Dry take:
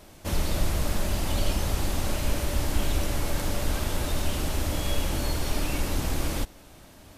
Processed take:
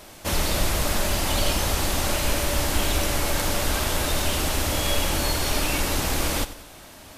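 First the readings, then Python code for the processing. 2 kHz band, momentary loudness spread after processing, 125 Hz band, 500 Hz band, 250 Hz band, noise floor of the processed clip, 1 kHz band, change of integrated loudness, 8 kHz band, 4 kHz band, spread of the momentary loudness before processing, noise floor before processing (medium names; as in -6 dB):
+8.5 dB, 3 LU, +1.0 dB, +5.5 dB, +2.5 dB, -45 dBFS, +7.5 dB, +5.5 dB, +8.5 dB, +8.5 dB, 1 LU, -50 dBFS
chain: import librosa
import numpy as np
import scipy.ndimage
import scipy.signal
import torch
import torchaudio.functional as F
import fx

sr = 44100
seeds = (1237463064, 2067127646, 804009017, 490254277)

p1 = fx.low_shelf(x, sr, hz=400.0, db=-8.5)
p2 = p1 + fx.echo_feedback(p1, sr, ms=92, feedback_pct=44, wet_db=-15.0, dry=0)
y = F.gain(torch.from_numpy(p2), 8.5).numpy()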